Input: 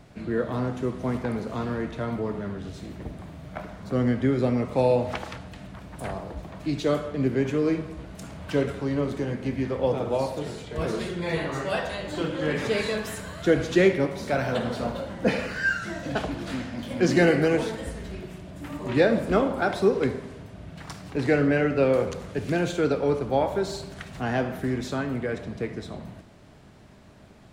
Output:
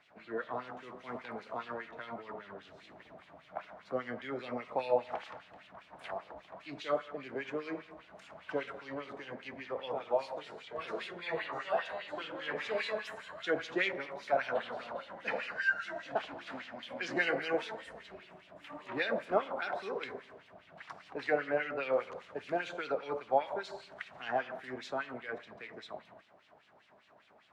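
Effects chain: LFO band-pass sine 5 Hz 670–3200 Hz

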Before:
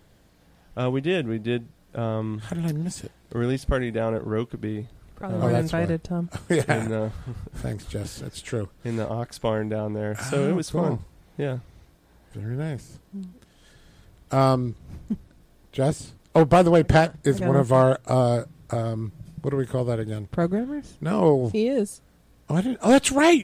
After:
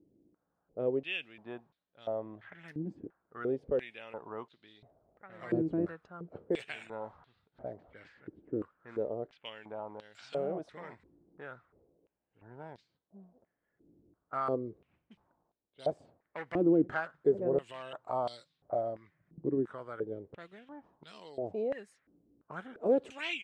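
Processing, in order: peak limiter -12.5 dBFS, peak gain reduction 5 dB; level-controlled noise filter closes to 500 Hz, open at -22 dBFS; bass shelf 490 Hz +5 dB; step-sequenced band-pass 2.9 Hz 320–3900 Hz; trim -2 dB

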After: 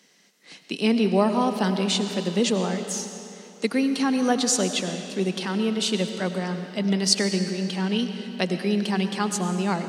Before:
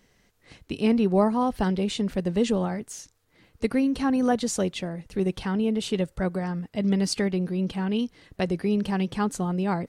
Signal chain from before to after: steep high-pass 160 Hz 48 dB/octave; peaking EQ 5.2 kHz +10 dB 2.4 oct; algorithmic reverb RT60 2.9 s, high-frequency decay 0.85×, pre-delay 60 ms, DRR 7.5 dB

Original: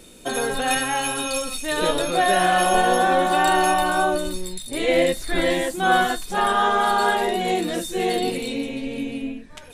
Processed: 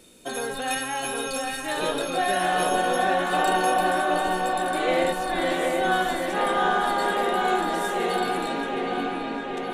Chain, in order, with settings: bass shelf 74 Hz -9 dB; feedback echo behind a low-pass 767 ms, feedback 69%, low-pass 3.1 kHz, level -3 dB; trim -5.5 dB

